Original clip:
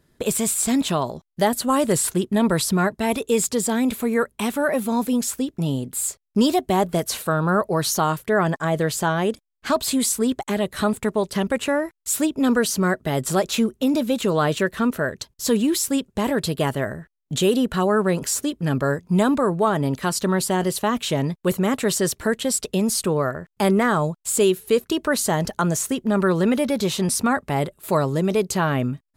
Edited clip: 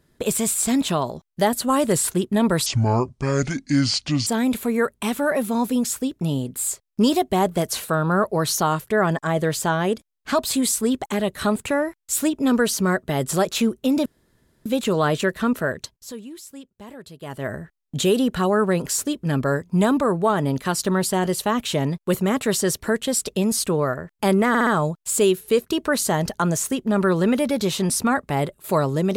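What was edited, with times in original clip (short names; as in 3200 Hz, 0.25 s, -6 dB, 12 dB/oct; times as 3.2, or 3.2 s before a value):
2.66–3.64 speed 61%
11.04–11.64 cut
14.03 insert room tone 0.60 s
15.19–16.91 dip -18 dB, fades 0.41 s quadratic
23.86 stutter 0.06 s, 4 plays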